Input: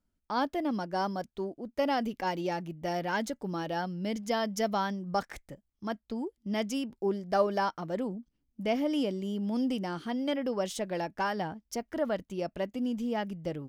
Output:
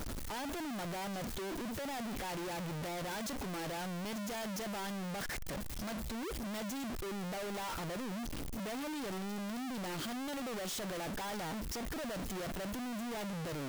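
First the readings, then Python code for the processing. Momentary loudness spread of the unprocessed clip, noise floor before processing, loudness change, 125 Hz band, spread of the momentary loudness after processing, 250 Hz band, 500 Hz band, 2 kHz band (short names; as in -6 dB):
8 LU, -80 dBFS, -7.0 dB, -3.0 dB, 1 LU, -7.5 dB, -10.0 dB, -4.5 dB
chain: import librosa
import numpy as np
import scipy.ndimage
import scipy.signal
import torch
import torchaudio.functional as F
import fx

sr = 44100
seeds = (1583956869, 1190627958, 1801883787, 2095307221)

y = np.sign(x) * np.sqrt(np.mean(np.square(x)))
y = y * librosa.db_to_amplitude(-7.0)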